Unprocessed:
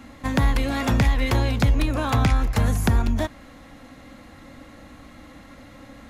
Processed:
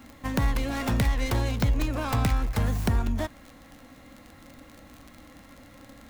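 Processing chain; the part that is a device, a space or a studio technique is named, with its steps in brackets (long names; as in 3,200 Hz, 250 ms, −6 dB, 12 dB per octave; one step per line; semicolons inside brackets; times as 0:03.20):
record under a worn stylus (stylus tracing distortion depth 0.43 ms; surface crackle 42 per second −30 dBFS; white noise bed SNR 40 dB)
level −5 dB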